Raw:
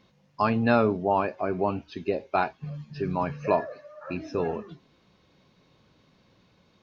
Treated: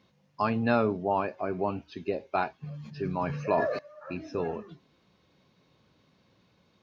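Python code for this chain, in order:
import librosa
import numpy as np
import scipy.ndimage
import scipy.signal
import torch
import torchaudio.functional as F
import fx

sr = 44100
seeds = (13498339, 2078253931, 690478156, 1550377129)

y = scipy.signal.sosfilt(scipy.signal.butter(2, 51.0, 'highpass', fs=sr, output='sos'), x)
y = fx.sustainer(y, sr, db_per_s=41.0, at=(2.74, 3.79))
y = y * 10.0 ** (-3.5 / 20.0)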